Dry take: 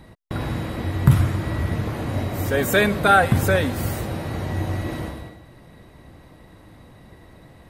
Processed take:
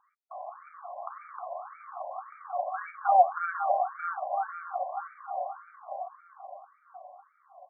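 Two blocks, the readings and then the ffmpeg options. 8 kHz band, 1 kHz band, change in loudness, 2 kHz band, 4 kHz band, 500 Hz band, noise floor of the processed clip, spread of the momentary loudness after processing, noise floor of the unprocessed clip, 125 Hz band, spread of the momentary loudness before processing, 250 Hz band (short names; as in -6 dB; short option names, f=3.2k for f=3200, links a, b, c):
under -40 dB, -1.5 dB, -9.5 dB, -16.5 dB, under -40 dB, -9.5 dB, -68 dBFS, 22 LU, -49 dBFS, under -40 dB, 13 LU, under -40 dB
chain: -filter_complex "[0:a]asplit=2[a][b];[b]aecho=0:1:310|496|607.6|674.6|714.7:0.631|0.398|0.251|0.158|0.1[c];[a][c]amix=inputs=2:normalize=0,tremolo=f=170:d=0.75,asplit=3[d][e][f];[d]bandpass=f=730:t=q:w=8,volume=0dB[g];[e]bandpass=f=1.09k:t=q:w=8,volume=-6dB[h];[f]bandpass=f=2.44k:t=q:w=8,volume=-9dB[i];[g][h][i]amix=inputs=3:normalize=0,asplit=2[j][k];[k]adelay=940,lowpass=f=1.3k:p=1,volume=-3dB,asplit=2[l][m];[m]adelay=940,lowpass=f=1.3k:p=1,volume=0.45,asplit=2[n][o];[o]adelay=940,lowpass=f=1.3k:p=1,volume=0.45,asplit=2[p][q];[q]adelay=940,lowpass=f=1.3k:p=1,volume=0.45,asplit=2[r][s];[s]adelay=940,lowpass=f=1.3k:p=1,volume=0.45,asplit=2[t][u];[u]adelay=940,lowpass=f=1.3k:p=1,volume=0.45[v];[l][n][p][r][t][v]amix=inputs=6:normalize=0[w];[j][w]amix=inputs=2:normalize=0,afftfilt=real='re*between(b*sr/1024,740*pow(1700/740,0.5+0.5*sin(2*PI*1.8*pts/sr))/1.41,740*pow(1700/740,0.5+0.5*sin(2*PI*1.8*pts/sr))*1.41)':imag='im*between(b*sr/1024,740*pow(1700/740,0.5+0.5*sin(2*PI*1.8*pts/sr))/1.41,740*pow(1700/740,0.5+0.5*sin(2*PI*1.8*pts/sr))*1.41)':win_size=1024:overlap=0.75,volume=6.5dB"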